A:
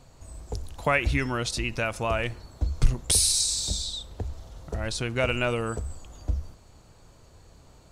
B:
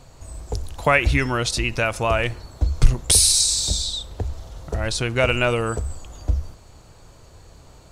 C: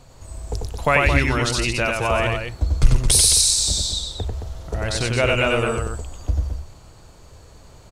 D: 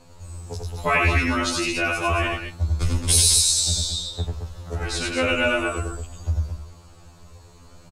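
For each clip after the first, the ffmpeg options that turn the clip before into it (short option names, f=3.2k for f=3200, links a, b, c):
-af "equalizer=f=220:w=1.8:g=-3,volume=6.5dB"
-af "aecho=1:1:93.29|218.7:0.708|0.447,volume=-1dB"
-filter_complex "[0:a]asplit=2[a][b];[b]adelay=24,volume=-11dB[c];[a][c]amix=inputs=2:normalize=0,afftfilt=real='re*2*eq(mod(b,4),0)':imag='im*2*eq(mod(b,4),0)':win_size=2048:overlap=0.75"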